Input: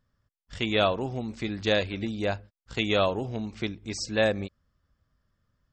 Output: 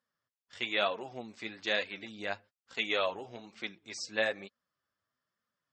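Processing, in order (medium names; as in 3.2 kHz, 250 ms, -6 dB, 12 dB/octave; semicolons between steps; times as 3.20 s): frequency weighting A; flange 1.1 Hz, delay 3.6 ms, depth 7.2 ms, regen +34%; dynamic bell 2 kHz, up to +5 dB, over -46 dBFS, Q 2.3; trim -2.5 dB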